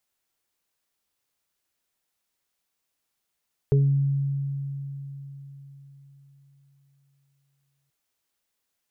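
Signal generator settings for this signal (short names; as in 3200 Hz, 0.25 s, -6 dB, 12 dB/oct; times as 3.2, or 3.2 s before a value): additive tone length 4.18 s, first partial 139 Hz, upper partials -19/-4 dB, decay 4.29 s, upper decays 0.95/0.29 s, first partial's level -15.5 dB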